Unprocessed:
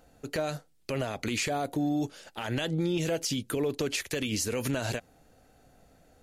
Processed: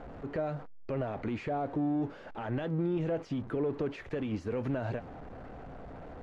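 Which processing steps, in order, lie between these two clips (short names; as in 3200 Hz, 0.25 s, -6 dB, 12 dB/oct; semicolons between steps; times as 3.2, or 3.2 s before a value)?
zero-crossing step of -35.5 dBFS; LPF 1300 Hz 12 dB/oct; gain -3.5 dB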